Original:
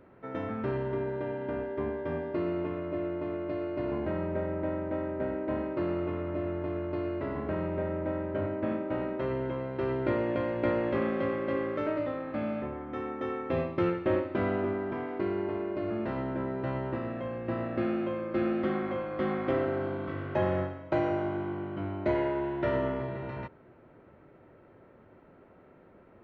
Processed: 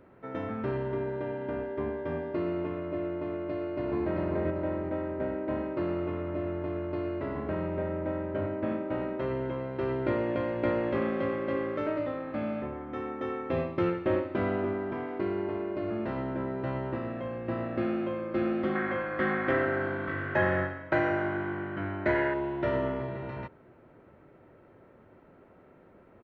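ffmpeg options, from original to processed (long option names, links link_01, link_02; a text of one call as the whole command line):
ffmpeg -i in.wav -filter_complex "[0:a]asplit=2[link_01][link_02];[link_02]afade=type=in:start_time=3.53:duration=0.01,afade=type=out:start_time=4.11:duration=0.01,aecho=0:1:390|780|1170|1560|1950:0.749894|0.299958|0.119983|0.0479932|0.0191973[link_03];[link_01][link_03]amix=inputs=2:normalize=0,asettb=1/sr,asplit=3[link_04][link_05][link_06];[link_04]atrim=end=18.754[link_07];[link_05]atrim=start=18.75:end=22.34,asetpts=PTS-STARTPTS,afade=type=in:duration=0.004:curve=qsin,afade=type=out:start_time=3.586:duration=0.004:curve=qsin,equalizer=frequency=1700:width=2.2:gain=14[link_08];[link_06]atrim=start=22.336[link_09];[link_07][link_08]acrossfade=duration=0.004:curve1=hsin:curve2=qsin[link_10];[link_10][link_09]acrossfade=duration=0.004:curve1=qsin:curve2=hsin" out.wav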